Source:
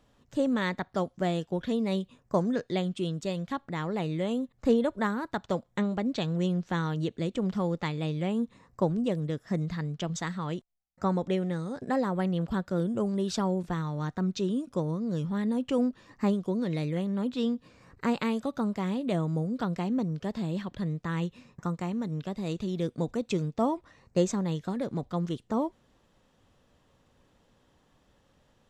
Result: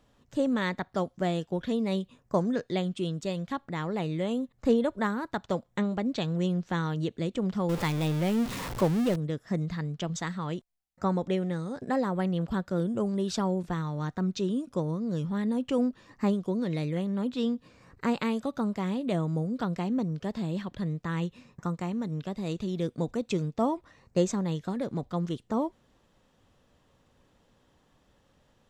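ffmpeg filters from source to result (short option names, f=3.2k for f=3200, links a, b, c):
-filter_complex "[0:a]asettb=1/sr,asplit=3[a][b][c];[a]atrim=end=7.694[d];[b]atrim=start=7.69:end=9.16,asetpts=PTS-STARTPTS,afade=t=in:d=0.004:c=qsin,afade=t=out:st=1.466:d=0.004:c=qsin,aeval=exprs='val(0)+0.5*0.0316*sgn(val(0))':c=same[e];[c]atrim=start=9.156[f];[d][e]acrossfade=d=0.004:c1=hsin:c2=qsin[g];[g][f]acrossfade=d=0.004:c1=qsin:c2=hsin"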